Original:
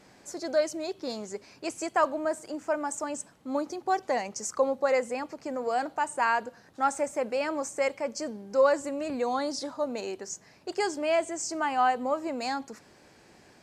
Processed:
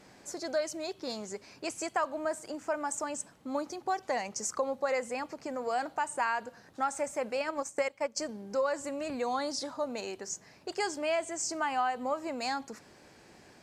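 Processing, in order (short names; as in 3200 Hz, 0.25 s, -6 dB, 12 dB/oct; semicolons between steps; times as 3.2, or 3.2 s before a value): dynamic EQ 350 Hz, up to -5 dB, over -39 dBFS, Q 0.75; 7.35–8.29 transient shaper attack +6 dB, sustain -11 dB; compressor, threshold -26 dBFS, peak gain reduction 7 dB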